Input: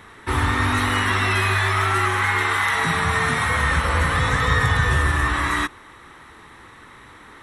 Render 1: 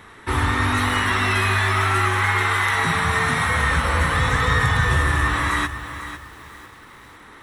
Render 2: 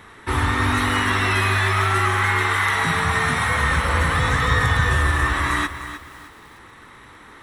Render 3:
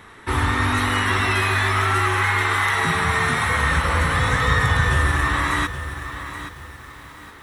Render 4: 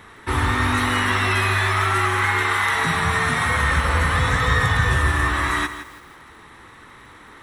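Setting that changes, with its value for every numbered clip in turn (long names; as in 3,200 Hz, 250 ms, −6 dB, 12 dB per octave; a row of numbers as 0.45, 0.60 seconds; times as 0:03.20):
feedback echo at a low word length, delay time: 499, 306, 824, 165 milliseconds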